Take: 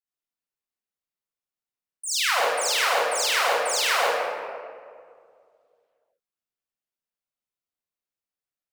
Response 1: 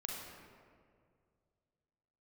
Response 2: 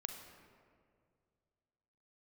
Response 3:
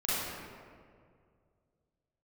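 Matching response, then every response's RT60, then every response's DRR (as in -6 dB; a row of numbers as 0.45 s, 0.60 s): 3; 2.1 s, 2.1 s, 2.1 s; -1.5 dB, 5.0 dB, -11.0 dB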